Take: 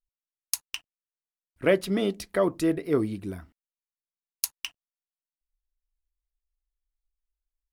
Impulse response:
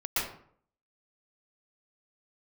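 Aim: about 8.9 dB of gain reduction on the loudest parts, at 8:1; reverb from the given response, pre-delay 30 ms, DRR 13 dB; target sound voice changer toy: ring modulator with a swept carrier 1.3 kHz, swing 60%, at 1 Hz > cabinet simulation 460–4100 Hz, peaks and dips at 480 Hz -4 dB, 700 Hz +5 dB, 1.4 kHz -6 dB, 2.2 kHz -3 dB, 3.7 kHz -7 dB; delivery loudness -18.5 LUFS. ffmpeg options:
-filter_complex "[0:a]acompressor=threshold=0.0501:ratio=8,asplit=2[s0][s1];[1:a]atrim=start_sample=2205,adelay=30[s2];[s1][s2]afir=irnorm=-1:irlink=0,volume=0.0794[s3];[s0][s3]amix=inputs=2:normalize=0,aeval=exprs='val(0)*sin(2*PI*1300*n/s+1300*0.6/1*sin(2*PI*1*n/s))':c=same,highpass=460,equalizer=f=480:t=q:w=4:g=-4,equalizer=f=700:t=q:w=4:g=5,equalizer=f=1400:t=q:w=4:g=-6,equalizer=f=2200:t=q:w=4:g=-3,equalizer=f=3700:t=q:w=4:g=-7,lowpass=f=4100:w=0.5412,lowpass=f=4100:w=1.3066,volume=9.44"

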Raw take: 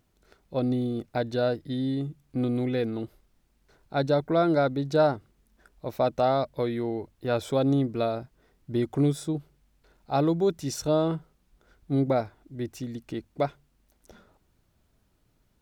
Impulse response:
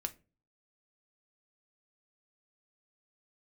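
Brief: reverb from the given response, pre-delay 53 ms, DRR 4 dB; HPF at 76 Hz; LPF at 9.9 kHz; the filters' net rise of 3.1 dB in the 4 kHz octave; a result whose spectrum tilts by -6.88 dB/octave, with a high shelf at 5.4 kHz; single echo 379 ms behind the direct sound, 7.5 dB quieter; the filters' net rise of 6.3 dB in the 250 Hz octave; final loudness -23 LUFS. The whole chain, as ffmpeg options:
-filter_complex "[0:a]highpass=76,lowpass=9900,equalizer=f=250:t=o:g=7.5,equalizer=f=4000:t=o:g=6,highshelf=f=5400:g=-6.5,aecho=1:1:379:0.422,asplit=2[s0][s1];[1:a]atrim=start_sample=2205,adelay=53[s2];[s1][s2]afir=irnorm=-1:irlink=0,volume=0.668[s3];[s0][s3]amix=inputs=2:normalize=0,volume=0.944"

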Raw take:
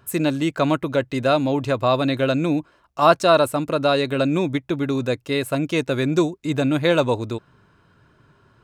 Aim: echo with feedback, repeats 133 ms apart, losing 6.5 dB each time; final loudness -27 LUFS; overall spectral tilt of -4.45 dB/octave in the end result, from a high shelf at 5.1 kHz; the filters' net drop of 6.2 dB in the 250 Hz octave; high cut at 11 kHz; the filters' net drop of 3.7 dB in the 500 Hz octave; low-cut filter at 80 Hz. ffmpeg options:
-af "highpass=80,lowpass=11000,equalizer=f=250:t=o:g=-7,equalizer=f=500:t=o:g=-3,highshelf=f=5100:g=-8.5,aecho=1:1:133|266|399|532|665|798:0.473|0.222|0.105|0.0491|0.0231|0.0109,volume=0.631"

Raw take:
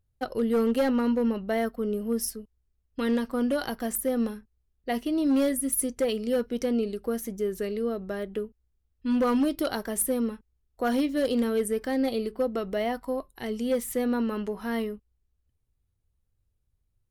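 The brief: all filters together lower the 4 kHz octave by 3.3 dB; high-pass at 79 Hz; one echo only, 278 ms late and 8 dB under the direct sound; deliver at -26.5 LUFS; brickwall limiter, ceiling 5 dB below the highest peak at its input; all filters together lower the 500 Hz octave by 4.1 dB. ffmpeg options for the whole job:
-af "highpass=79,equalizer=f=500:t=o:g=-4.5,equalizer=f=4000:t=o:g=-4.5,alimiter=limit=0.0794:level=0:latency=1,aecho=1:1:278:0.398,volume=1.58"

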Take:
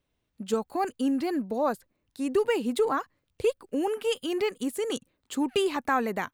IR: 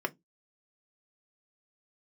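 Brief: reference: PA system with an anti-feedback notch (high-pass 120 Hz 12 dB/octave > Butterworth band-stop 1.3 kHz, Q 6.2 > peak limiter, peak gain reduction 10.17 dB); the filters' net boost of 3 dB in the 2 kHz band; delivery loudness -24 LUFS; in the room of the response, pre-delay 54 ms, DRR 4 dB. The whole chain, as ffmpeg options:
-filter_complex "[0:a]equalizer=f=2000:t=o:g=4,asplit=2[s0][s1];[1:a]atrim=start_sample=2205,adelay=54[s2];[s1][s2]afir=irnorm=-1:irlink=0,volume=0.316[s3];[s0][s3]amix=inputs=2:normalize=0,highpass=120,asuperstop=centerf=1300:order=8:qfactor=6.2,volume=2.37,alimiter=limit=0.168:level=0:latency=1"

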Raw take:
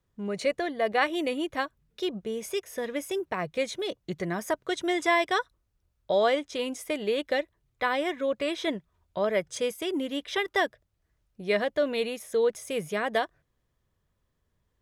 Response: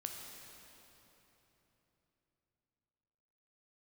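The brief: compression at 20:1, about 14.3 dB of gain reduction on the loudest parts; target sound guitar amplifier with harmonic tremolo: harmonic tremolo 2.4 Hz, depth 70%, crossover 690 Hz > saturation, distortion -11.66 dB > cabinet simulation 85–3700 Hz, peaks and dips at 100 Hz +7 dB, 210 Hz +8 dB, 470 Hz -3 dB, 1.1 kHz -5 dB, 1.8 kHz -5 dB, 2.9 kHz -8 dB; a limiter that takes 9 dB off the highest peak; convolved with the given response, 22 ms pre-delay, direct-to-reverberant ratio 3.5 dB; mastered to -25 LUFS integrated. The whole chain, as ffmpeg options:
-filter_complex "[0:a]acompressor=threshold=0.02:ratio=20,alimiter=level_in=2.51:limit=0.0631:level=0:latency=1,volume=0.398,asplit=2[s0][s1];[1:a]atrim=start_sample=2205,adelay=22[s2];[s1][s2]afir=irnorm=-1:irlink=0,volume=0.794[s3];[s0][s3]amix=inputs=2:normalize=0,acrossover=split=690[s4][s5];[s4]aeval=exprs='val(0)*(1-0.7/2+0.7/2*cos(2*PI*2.4*n/s))':c=same[s6];[s5]aeval=exprs='val(0)*(1-0.7/2-0.7/2*cos(2*PI*2.4*n/s))':c=same[s7];[s6][s7]amix=inputs=2:normalize=0,asoftclip=threshold=0.01,highpass=85,equalizer=f=100:t=q:w=4:g=7,equalizer=f=210:t=q:w=4:g=8,equalizer=f=470:t=q:w=4:g=-3,equalizer=f=1100:t=q:w=4:g=-5,equalizer=f=1800:t=q:w=4:g=-5,equalizer=f=2900:t=q:w=4:g=-8,lowpass=f=3700:w=0.5412,lowpass=f=3700:w=1.3066,volume=13.3"

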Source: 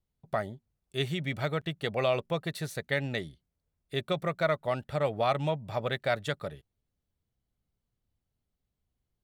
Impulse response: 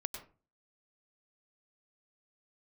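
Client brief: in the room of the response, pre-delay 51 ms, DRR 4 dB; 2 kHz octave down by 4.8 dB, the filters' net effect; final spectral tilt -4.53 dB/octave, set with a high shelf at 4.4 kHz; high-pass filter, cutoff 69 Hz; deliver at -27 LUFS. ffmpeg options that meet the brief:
-filter_complex "[0:a]highpass=69,equalizer=f=2000:t=o:g=-7,highshelf=f=4400:g=5.5,asplit=2[s0][s1];[1:a]atrim=start_sample=2205,adelay=51[s2];[s1][s2]afir=irnorm=-1:irlink=0,volume=0.668[s3];[s0][s3]amix=inputs=2:normalize=0,volume=1.58"

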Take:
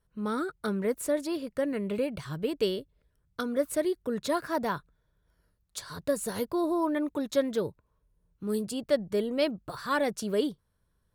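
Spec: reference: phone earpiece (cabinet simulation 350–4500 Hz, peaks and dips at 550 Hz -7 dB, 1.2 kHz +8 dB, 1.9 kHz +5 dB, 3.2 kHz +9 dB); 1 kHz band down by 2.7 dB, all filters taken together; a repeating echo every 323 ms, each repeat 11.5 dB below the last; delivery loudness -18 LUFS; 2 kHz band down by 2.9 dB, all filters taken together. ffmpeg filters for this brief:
-af "highpass=350,equalizer=f=550:t=q:w=4:g=-7,equalizer=f=1200:t=q:w=4:g=8,equalizer=f=1900:t=q:w=4:g=5,equalizer=f=3200:t=q:w=4:g=9,lowpass=f=4500:w=0.5412,lowpass=f=4500:w=1.3066,equalizer=f=1000:t=o:g=-5.5,equalizer=f=2000:t=o:g=-7,aecho=1:1:323|646|969:0.266|0.0718|0.0194,volume=7.5"

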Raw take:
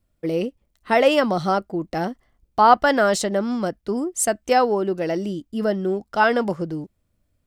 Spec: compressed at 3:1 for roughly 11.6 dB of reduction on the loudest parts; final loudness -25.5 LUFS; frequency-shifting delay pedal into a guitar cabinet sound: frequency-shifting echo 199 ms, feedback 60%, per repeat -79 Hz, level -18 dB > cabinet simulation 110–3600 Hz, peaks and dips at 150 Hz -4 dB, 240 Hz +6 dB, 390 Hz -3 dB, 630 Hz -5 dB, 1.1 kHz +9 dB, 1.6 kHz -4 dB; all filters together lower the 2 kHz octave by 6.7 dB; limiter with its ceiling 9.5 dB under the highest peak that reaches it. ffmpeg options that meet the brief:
-filter_complex "[0:a]equalizer=f=2000:t=o:g=-7.5,acompressor=threshold=0.0501:ratio=3,alimiter=limit=0.0631:level=0:latency=1,asplit=6[s0][s1][s2][s3][s4][s5];[s1]adelay=199,afreqshift=-79,volume=0.126[s6];[s2]adelay=398,afreqshift=-158,volume=0.0759[s7];[s3]adelay=597,afreqshift=-237,volume=0.0452[s8];[s4]adelay=796,afreqshift=-316,volume=0.0272[s9];[s5]adelay=995,afreqshift=-395,volume=0.0164[s10];[s0][s6][s7][s8][s9][s10]amix=inputs=6:normalize=0,highpass=110,equalizer=f=150:t=q:w=4:g=-4,equalizer=f=240:t=q:w=4:g=6,equalizer=f=390:t=q:w=4:g=-3,equalizer=f=630:t=q:w=4:g=-5,equalizer=f=1100:t=q:w=4:g=9,equalizer=f=1600:t=q:w=4:g=-4,lowpass=f=3600:w=0.5412,lowpass=f=3600:w=1.3066,volume=2.24"

